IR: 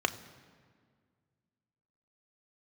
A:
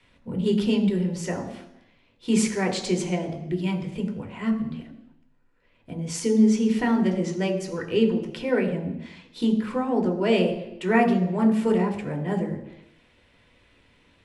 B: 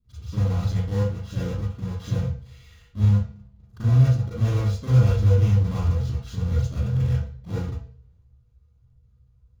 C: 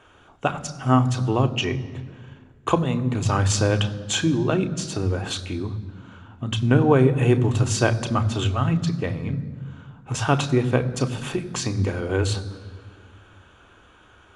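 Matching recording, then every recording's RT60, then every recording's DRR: C; 0.85, 0.45, 1.9 s; 2.5, -11.5, 7.5 dB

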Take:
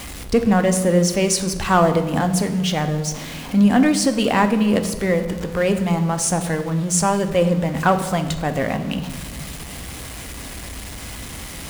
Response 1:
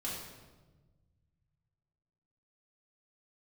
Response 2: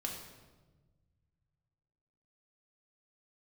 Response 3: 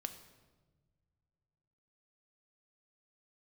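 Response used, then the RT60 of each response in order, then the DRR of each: 3; 1.3 s, 1.3 s, not exponential; -6.5, -0.5, 8.0 dB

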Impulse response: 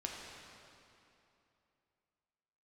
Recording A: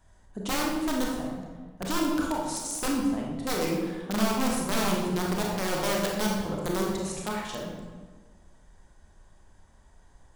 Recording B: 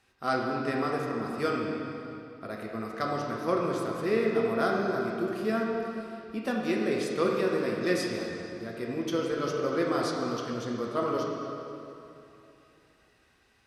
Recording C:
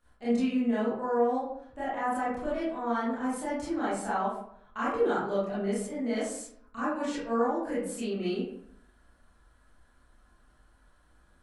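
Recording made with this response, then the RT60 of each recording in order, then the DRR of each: B; 1.4, 2.9, 0.65 s; -2.0, -2.0, -11.5 dB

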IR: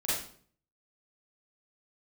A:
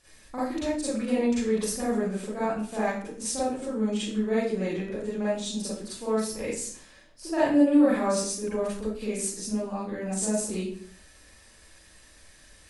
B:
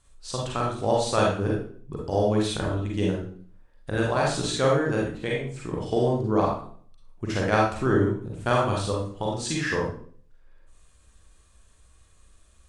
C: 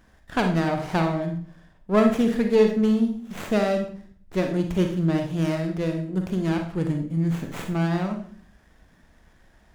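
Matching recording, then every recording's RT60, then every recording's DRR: A; 0.55, 0.50, 0.55 s; -10.5, -3.5, 4.0 dB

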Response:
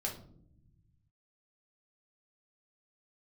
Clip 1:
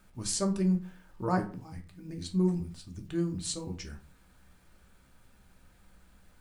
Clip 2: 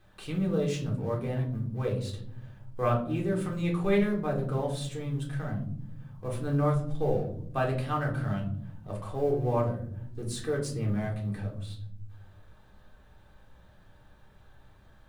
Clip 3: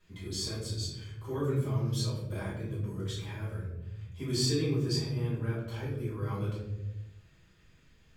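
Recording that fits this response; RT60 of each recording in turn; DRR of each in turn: 2; 0.40 s, not exponential, 0.95 s; 3.0, -2.5, -9.0 dB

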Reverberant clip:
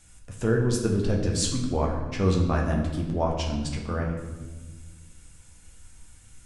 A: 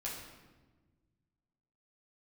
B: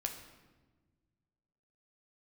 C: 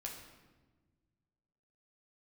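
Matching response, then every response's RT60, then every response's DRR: C; 1.3, 1.3, 1.3 s; -5.5, 3.0, -1.0 dB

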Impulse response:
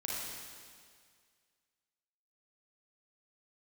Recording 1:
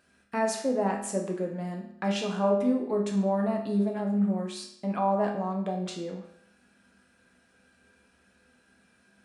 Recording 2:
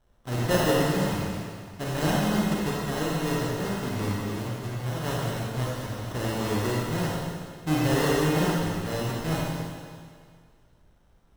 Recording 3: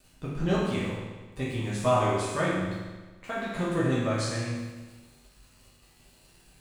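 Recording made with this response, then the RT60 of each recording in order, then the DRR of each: 2; 0.70, 2.0, 1.3 s; 0.0, -5.0, -8.5 dB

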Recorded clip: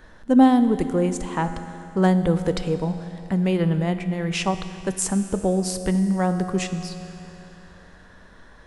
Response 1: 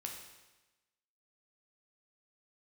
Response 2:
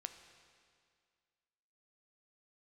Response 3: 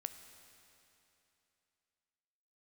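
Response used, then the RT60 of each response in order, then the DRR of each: 3; 1.1, 2.1, 3.0 s; 0.5, 7.5, 8.5 dB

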